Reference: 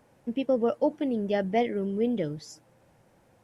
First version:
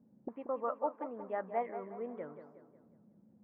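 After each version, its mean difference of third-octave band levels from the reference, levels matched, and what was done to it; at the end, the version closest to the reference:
8.0 dB: flat-topped bell 4,100 Hz −10.5 dB 1.2 octaves
envelope filter 200–1,100 Hz, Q 6, up, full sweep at −31.5 dBFS
high-frequency loss of the air 370 metres
on a send: feedback echo with a low-pass in the loop 182 ms, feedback 49%, low-pass 2,900 Hz, level −10 dB
on the sum: level +9 dB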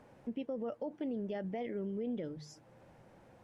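3.0 dB: low-pass filter 3,100 Hz 6 dB per octave
mains-hum notches 50/100/150 Hz
brickwall limiter −22 dBFS, peak gain reduction 9.5 dB
downward compressor 1.5 to 1, threshold −59 dBFS, peak gain reduction 11.5 dB
level +3 dB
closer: second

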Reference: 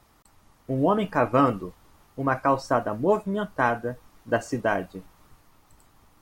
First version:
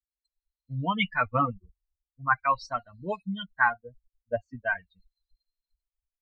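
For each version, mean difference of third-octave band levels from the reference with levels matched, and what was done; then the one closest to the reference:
13.5 dB: spectral dynamics exaggerated over time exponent 3
drawn EQ curve 200 Hz 0 dB, 350 Hz −14 dB, 2,500 Hz +13 dB
auto-filter low-pass sine 0.42 Hz 520–4,300 Hz
high-frequency loss of the air 85 metres
level +1 dB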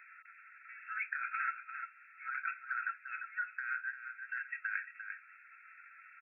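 23.0 dB: brick-wall band-pass 1,300–2,700 Hz
compressor whose output falls as the input rises −37 dBFS, ratio −1
on a send: single-tap delay 347 ms −10.5 dB
on the sum: multiband upward and downward compressor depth 40%
level +1 dB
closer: first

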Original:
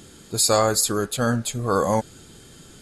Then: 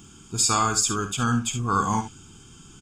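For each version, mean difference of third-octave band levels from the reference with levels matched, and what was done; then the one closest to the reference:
4.5 dB: ambience of single reflections 50 ms −10.5 dB, 71 ms −11 dB
dynamic equaliser 2,700 Hz, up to +5 dB, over −37 dBFS, Q 0.7
phaser with its sweep stopped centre 2,800 Hz, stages 8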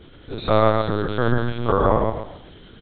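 11.0 dB: spectrum averaged block by block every 100 ms
repeating echo 134 ms, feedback 32%, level −3.5 dB
linear-prediction vocoder at 8 kHz pitch kept
level +3 dB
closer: first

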